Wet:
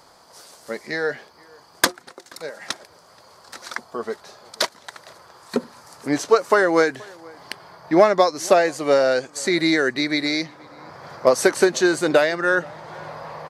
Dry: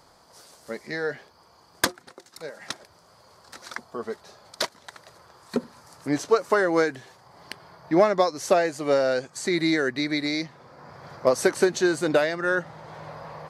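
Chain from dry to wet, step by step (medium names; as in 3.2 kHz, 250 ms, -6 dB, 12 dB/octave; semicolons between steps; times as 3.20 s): bass shelf 190 Hz -8 dB; echo from a far wall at 82 m, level -25 dB; trim +5.5 dB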